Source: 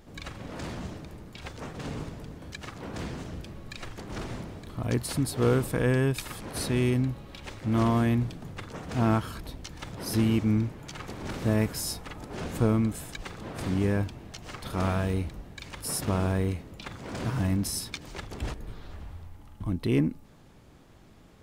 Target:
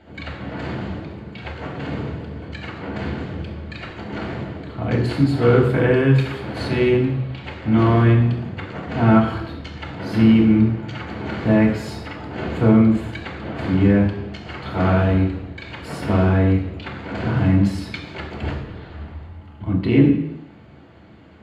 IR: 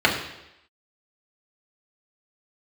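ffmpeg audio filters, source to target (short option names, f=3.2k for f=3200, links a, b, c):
-filter_complex "[0:a]highshelf=f=5.9k:g=-10.5[a];[1:a]atrim=start_sample=2205[b];[a][b]afir=irnorm=-1:irlink=0,volume=-10dB"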